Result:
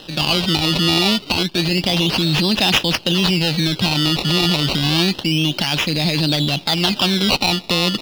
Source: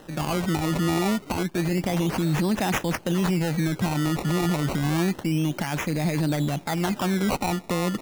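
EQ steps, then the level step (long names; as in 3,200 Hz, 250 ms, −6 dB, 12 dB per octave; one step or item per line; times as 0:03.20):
flat-topped bell 3,700 Hz +16 dB 1.2 octaves
+4.5 dB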